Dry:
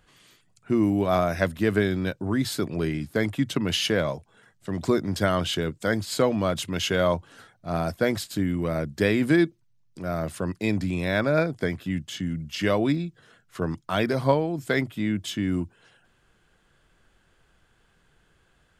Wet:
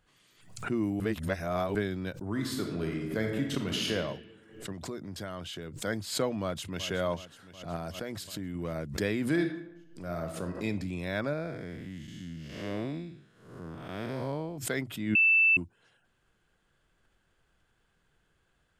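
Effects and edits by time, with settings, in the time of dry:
0:01.00–0:01.75: reverse
0:02.30–0:03.92: thrown reverb, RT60 1.3 s, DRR 1.5 dB
0:04.72–0:05.82: downward compressor 2 to 1, threshold −32 dBFS
0:06.42–0:06.88: delay throw 370 ms, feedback 65%, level −13 dB
0:07.76–0:08.55: downward compressor, threshold −24 dBFS
0:09.27–0:10.65: thrown reverb, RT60 0.88 s, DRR 4.5 dB
0:11.33–0:14.58: spectrum smeared in time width 259 ms
0:15.15–0:15.57: beep over 2,650 Hz −10.5 dBFS
whole clip: background raised ahead of every attack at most 97 dB per second; level −8.5 dB

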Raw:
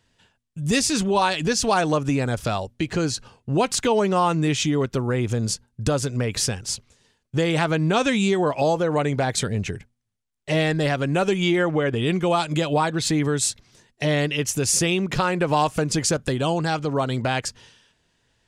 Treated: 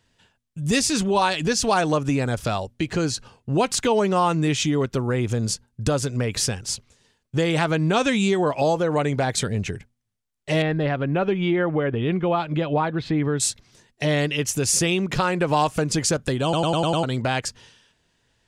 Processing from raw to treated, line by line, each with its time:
0:10.62–0:13.40: high-frequency loss of the air 360 metres
0:16.43: stutter in place 0.10 s, 6 plays

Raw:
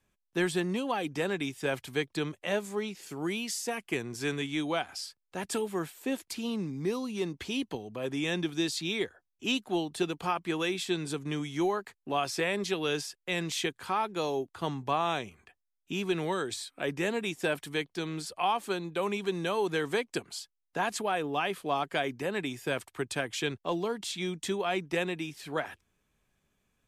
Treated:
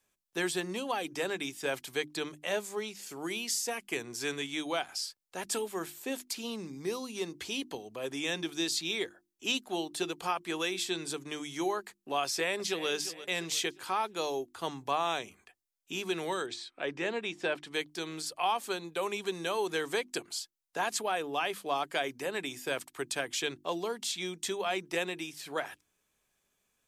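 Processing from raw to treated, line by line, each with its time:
0:12.24–0:12.89: delay throw 350 ms, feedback 40%, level −13.5 dB
0:16.46–0:17.74: low-pass filter 3,800 Hz
whole clip: bass and treble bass −9 dB, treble +7 dB; mains-hum notches 50/100/150/200/250/300/350 Hz; dynamic equaliser 9,700 Hz, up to −3 dB, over −48 dBFS, Q 1.5; level −1.5 dB

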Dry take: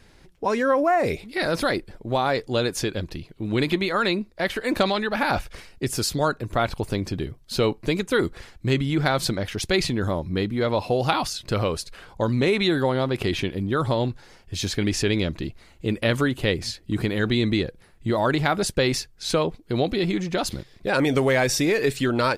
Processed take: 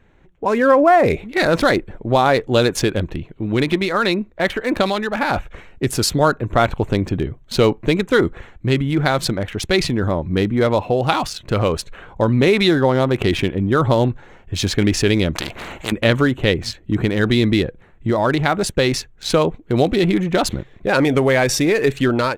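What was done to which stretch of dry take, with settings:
0:15.35–0:15.92: every bin compressed towards the loudest bin 4 to 1
whole clip: adaptive Wiener filter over 9 samples; automatic gain control; level −1 dB

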